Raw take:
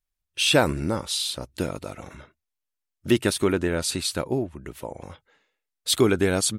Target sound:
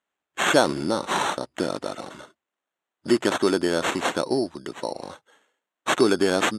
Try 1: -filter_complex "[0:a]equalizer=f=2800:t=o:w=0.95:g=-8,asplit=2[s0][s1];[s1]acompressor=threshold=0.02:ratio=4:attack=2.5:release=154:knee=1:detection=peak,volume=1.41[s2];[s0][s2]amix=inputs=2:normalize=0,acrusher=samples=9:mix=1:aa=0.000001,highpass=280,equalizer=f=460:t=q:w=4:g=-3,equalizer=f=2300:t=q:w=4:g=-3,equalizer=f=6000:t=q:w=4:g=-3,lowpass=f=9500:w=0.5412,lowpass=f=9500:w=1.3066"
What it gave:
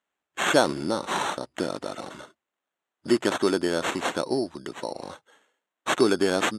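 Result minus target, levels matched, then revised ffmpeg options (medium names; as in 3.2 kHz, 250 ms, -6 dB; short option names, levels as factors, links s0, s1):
compression: peak gain reduction +6.5 dB
-filter_complex "[0:a]equalizer=f=2800:t=o:w=0.95:g=-8,asplit=2[s0][s1];[s1]acompressor=threshold=0.0562:ratio=4:attack=2.5:release=154:knee=1:detection=peak,volume=1.41[s2];[s0][s2]amix=inputs=2:normalize=0,acrusher=samples=9:mix=1:aa=0.000001,highpass=280,equalizer=f=460:t=q:w=4:g=-3,equalizer=f=2300:t=q:w=4:g=-3,equalizer=f=6000:t=q:w=4:g=-3,lowpass=f=9500:w=0.5412,lowpass=f=9500:w=1.3066"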